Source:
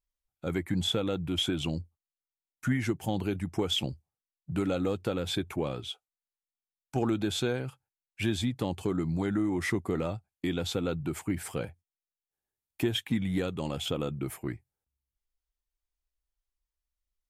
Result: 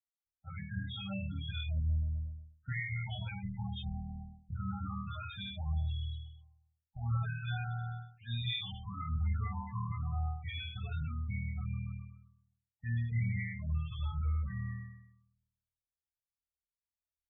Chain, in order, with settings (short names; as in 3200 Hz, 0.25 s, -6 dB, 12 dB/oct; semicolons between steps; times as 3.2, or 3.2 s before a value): spectral limiter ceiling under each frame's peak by 23 dB; bell 83 Hz +14 dB 1.9 oct; de-hum 81.39 Hz, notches 6; on a send: flutter echo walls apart 4.4 m, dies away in 1.4 s; on the sum: reverse; compressor 5:1, threshold -32 dBFS, peak gain reduction 17.5 dB; reverse; low-pass opened by the level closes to 930 Hz, open at -34 dBFS; bell 340 Hz -12.5 dB 1.2 oct; loudest bins only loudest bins 8; three-band expander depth 70%; gain +1.5 dB